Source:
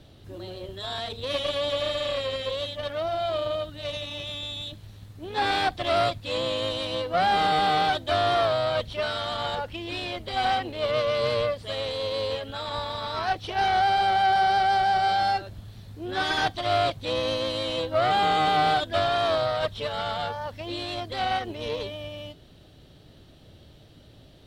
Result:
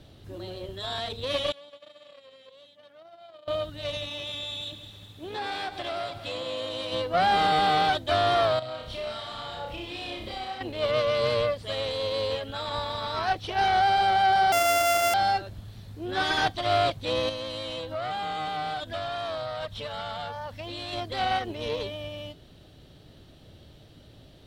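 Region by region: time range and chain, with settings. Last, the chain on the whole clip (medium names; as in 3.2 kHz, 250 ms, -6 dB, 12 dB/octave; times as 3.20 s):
1.52–3.48 s: gate -26 dBFS, range -21 dB + high-pass 150 Hz 24 dB/octave + compression 4:1, threshold -47 dBFS
4.08–6.92 s: compression 4:1, threshold -30 dBFS + bass shelf 130 Hz -9.5 dB + echo whose repeats swap between lows and highs 104 ms, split 980 Hz, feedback 74%, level -9 dB
8.59–10.61 s: band-stop 1.5 kHz, Q 17 + compression 16:1, threshold -34 dBFS + flutter echo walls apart 5.4 m, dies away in 0.65 s
14.52–15.14 s: sorted samples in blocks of 64 samples + bass shelf 180 Hz -11 dB + band-stop 4 kHz, Q 5.2
17.29–20.93 s: compression 2.5:1, threshold -32 dBFS + peaking EQ 380 Hz -6 dB 0.49 oct
whole clip: none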